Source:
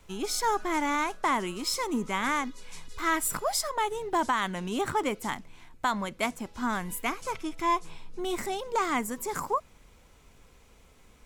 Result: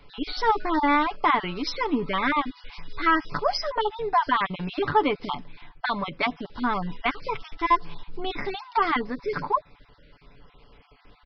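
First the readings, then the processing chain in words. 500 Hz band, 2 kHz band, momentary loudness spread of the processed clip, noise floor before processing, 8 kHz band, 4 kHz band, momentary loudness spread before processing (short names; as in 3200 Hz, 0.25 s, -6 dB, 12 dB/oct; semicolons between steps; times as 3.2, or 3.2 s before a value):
+3.5 dB, +4.5 dB, 11 LU, -57 dBFS, under -15 dB, +3.0 dB, 7 LU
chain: random spectral dropouts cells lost 26%; comb 6.9 ms, depth 55%; downsampling 11025 Hz; gain +4.5 dB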